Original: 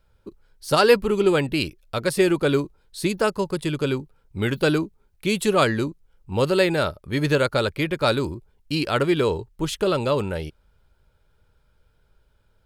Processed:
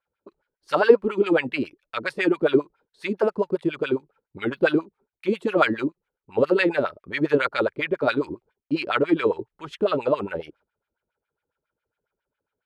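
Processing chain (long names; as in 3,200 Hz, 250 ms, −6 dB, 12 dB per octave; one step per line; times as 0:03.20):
noise gate −49 dBFS, range −12 dB
auto-filter band-pass sine 7.3 Hz 270–2,400 Hz
level +6.5 dB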